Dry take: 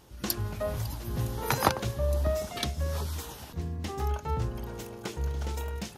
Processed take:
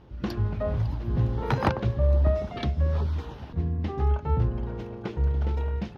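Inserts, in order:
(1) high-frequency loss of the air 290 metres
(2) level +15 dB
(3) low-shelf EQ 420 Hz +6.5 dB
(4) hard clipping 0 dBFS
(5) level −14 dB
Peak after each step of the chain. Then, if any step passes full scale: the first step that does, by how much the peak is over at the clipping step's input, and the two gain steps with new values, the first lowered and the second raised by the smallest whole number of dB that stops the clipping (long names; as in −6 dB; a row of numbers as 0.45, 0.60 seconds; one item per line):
−7.0, +8.0, +9.5, 0.0, −14.0 dBFS
step 2, 9.5 dB
step 2 +5 dB, step 5 −4 dB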